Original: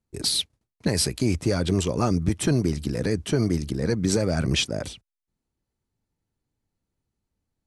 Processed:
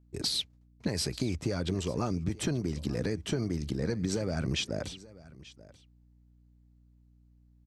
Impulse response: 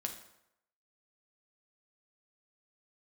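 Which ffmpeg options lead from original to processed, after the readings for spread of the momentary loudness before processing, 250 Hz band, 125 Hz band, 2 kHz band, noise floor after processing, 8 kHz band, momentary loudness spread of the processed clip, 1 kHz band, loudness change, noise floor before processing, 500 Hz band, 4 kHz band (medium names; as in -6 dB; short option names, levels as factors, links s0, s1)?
5 LU, -8.0 dB, -8.0 dB, -7.5 dB, -62 dBFS, -9.5 dB, 14 LU, -8.5 dB, -8.0 dB, under -85 dBFS, -8.0 dB, -7.0 dB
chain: -af "equalizer=f=9900:t=o:w=0.4:g=-10,acompressor=threshold=0.0631:ratio=6,aeval=exprs='val(0)+0.00141*(sin(2*PI*60*n/s)+sin(2*PI*2*60*n/s)/2+sin(2*PI*3*60*n/s)/3+sin(2*PI*4*60*n/s)/4+sin(2*PI*5*60*n/s)/5)':c=same,aecho=1:1:885:0.1,volume=0.708"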